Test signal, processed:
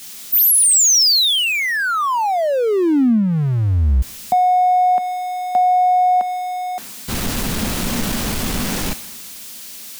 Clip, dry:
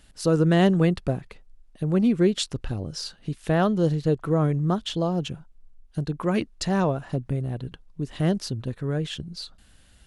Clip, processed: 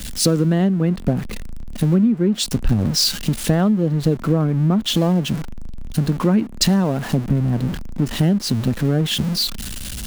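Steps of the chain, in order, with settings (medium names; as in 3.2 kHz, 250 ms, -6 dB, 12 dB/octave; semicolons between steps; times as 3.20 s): jump at every zero crossing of -29 dBFS; peaking EQ 220 Hz +11.5 dB 0.73 oct; compression 20:1, threshold -20 dBFS; three bands expanded up and down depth 70%; trim +7 dB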